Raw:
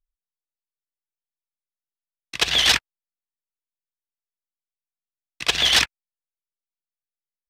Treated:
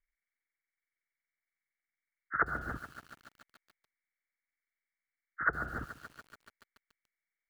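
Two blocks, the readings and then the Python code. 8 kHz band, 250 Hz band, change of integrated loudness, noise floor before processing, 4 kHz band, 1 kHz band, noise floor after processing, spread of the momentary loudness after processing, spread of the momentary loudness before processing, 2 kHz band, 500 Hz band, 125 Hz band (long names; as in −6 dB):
below −35 dB, −6.5 dB, −17.0 dB, below −85 dBFS, below −40 dB, −4.5 dB, below −85 dBFS, 20 LU, 10 LU, −10.5 dB, −10.0 dB, −5.5 dB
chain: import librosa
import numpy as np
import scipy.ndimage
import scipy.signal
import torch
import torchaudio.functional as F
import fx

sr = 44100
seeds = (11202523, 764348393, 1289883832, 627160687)

y = fx.freq_compress(x, sr, knee_hz=1100.0, ratio=4.0)
y = fx.env_lowpass_down(y, sr, base_hz=340.0, full_db=-13.5)
y = fx.echo_crushed(y, sr, ms=143, feedback_pct=80, bits=7, wet_db=-14.0)
y = y * 10.0 ** (-6.0 / 20.0)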